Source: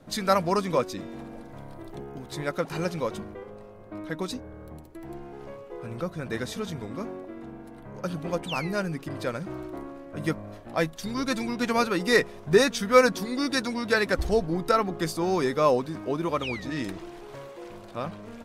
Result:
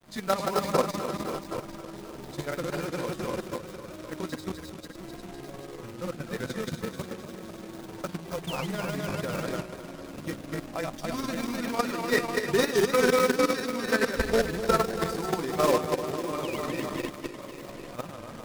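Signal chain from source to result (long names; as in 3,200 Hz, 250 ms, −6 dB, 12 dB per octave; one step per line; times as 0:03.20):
feedback delay that plays each chunk backwards 132 ms, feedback 81%, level −3 dB
high-shelf EQ 3,600 Hz −2.5 dB
output level in coarse steps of 10 dB
log-companded quantiser 4 bits
granular cloud 91 ms, spray 12 ms, pitch spread up and down by 0 semitones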